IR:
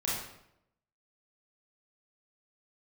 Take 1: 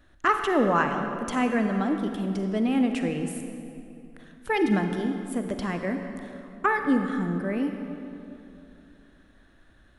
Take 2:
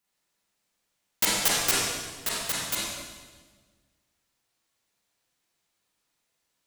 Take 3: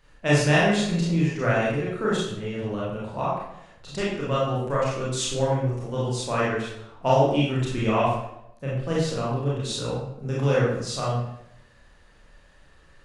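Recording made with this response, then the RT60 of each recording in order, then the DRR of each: 3; 2.8 s, 1.4 s, 0.80 s; 5.0 dB, -6.5 dB, -7.0 dB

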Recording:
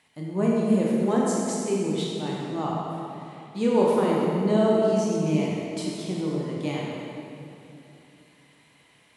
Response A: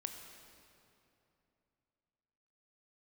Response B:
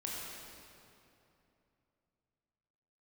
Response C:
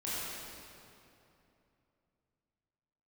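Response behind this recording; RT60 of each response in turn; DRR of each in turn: B; 2.9 s, 2.9 s, 2.9 s; 5.0 dB, -4.5 dB, -10.0 dB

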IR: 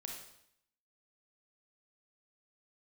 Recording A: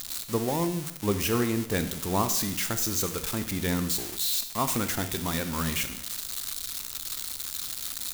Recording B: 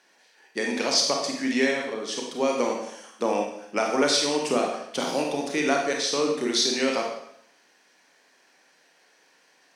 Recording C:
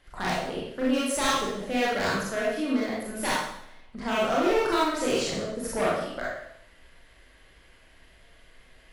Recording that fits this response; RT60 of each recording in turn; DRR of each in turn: B; 0.70 s, 0.70 s, 0.70 s; 9.0 dB, 0.5 dB, -6.5 dB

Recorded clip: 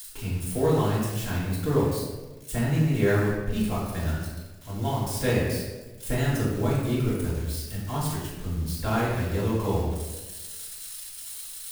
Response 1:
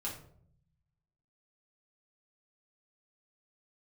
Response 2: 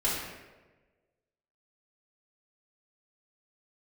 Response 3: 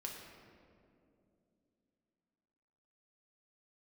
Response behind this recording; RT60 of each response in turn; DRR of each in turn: 2; 0.60 s, 1.2 s, 2.7 s; -5.5 dB, -8.5 dB, -1.0 dB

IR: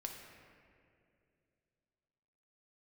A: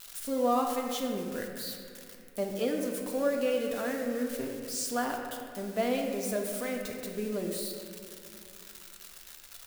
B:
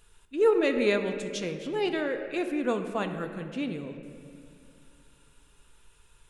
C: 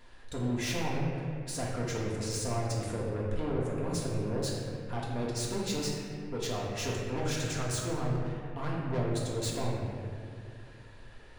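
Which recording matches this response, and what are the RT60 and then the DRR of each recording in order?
A; 2.5 s, 2.4 s, 2.4 s; 1.0 dB, 6.0 dB, -5.0 dB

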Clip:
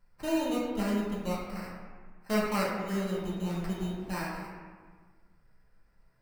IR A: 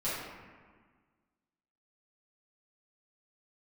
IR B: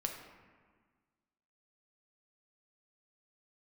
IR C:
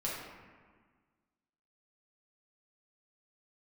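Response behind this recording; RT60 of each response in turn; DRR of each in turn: C; 1.5 s, 1.6 s, 1.5 s; -12.5 dB, 2.0 dB, -6.5 dB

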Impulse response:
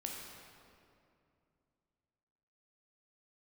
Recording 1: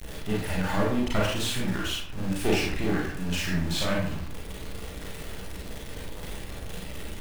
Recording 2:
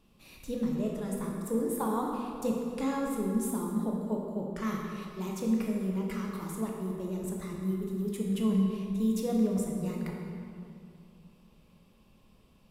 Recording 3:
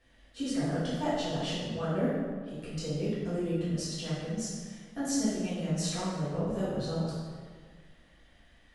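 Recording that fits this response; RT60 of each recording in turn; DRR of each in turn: 2; 0.60 s, 2.5 s, 1.7 s; -4.5 dB, -1.0 dB, -11.0 dB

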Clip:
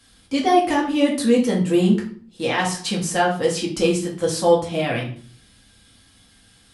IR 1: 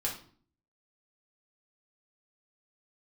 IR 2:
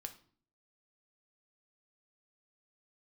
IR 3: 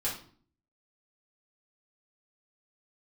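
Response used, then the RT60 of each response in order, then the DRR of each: 1; 0.50 s, 0.50 s, 0.50 s; -3.5 dB, 6.0 dB, -7.5 dB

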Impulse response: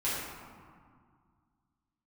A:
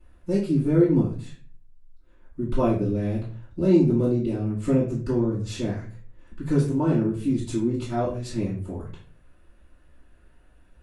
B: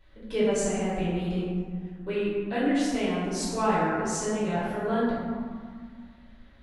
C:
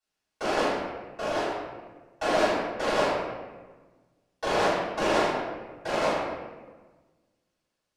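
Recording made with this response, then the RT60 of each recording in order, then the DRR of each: B; 0.40 s, 2.0 s, 1.4 s; -10.5 dB, -10.5 dB, -14.5 dB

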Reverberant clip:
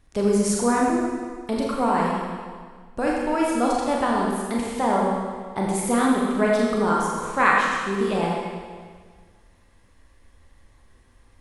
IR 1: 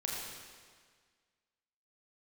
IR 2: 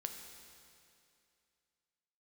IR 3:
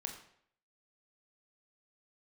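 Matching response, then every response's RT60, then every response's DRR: 1; 1.7 s, 2.5 s, 0.65 s; -3.5 dB, 4.5 dB, 2.5 dB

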